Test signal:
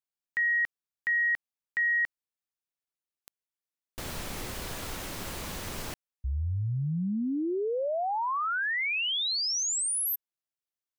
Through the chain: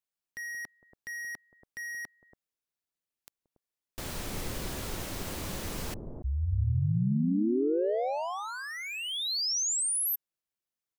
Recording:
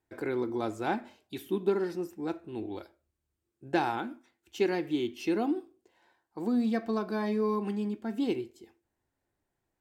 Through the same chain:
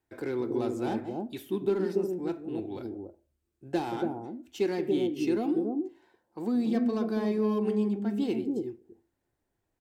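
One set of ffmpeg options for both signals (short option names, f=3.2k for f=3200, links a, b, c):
-filter_complex "[0:a]acrossover=split=660|3900[a][b][c];[a]aecho=1:1:177.8|282.8:0.355|0.891[d];[b]asoftclip=type=tanh:threshold=-40dB[e];[d][e][c]amix=inputs=3:normalize=0"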